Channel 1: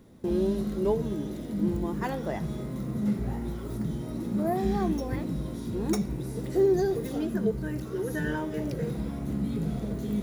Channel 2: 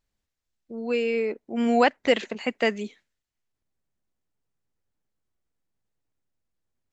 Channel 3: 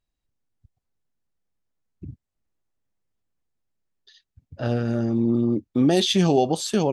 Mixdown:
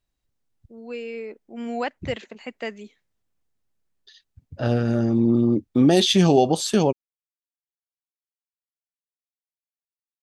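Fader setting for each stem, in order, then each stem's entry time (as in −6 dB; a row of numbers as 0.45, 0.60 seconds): muted, −8.0 dB, +2.5 dB; muted, 0.00 s, 0.00 s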